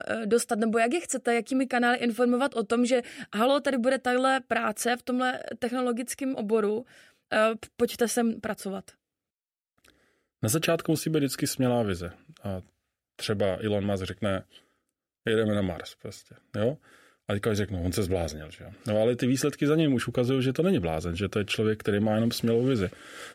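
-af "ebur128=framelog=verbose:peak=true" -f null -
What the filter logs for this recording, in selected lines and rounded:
Integrated loudness:
  I:         -27.2 LUFS
  Threshold: -37.9 LUFS
Loudness range:
  LRA:         5.4 LU
  Threshold: -48.3 LUFS
  LRA low:   -31.3 LUFS
  LRA high:  -25.9 LUFS
True peak:
  Peak:      -12.5 dBFS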